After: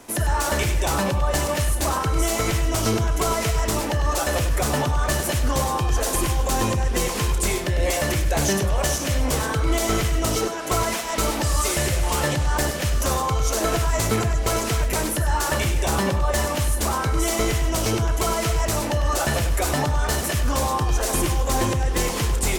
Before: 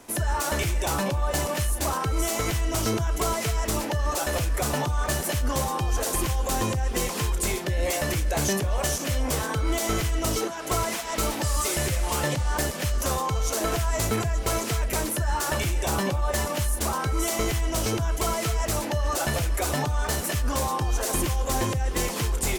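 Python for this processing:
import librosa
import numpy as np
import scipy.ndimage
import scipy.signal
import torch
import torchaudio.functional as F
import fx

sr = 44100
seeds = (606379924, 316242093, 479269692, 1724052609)

p1 = x + fx.echo_single(x, sr, ms=99, db=-10.0, dry=0)
p2 = fx.doppler_dist(p1, sr, depth_ms=0.11)
y = p2 * librosa.db_to_amplitude(3.5)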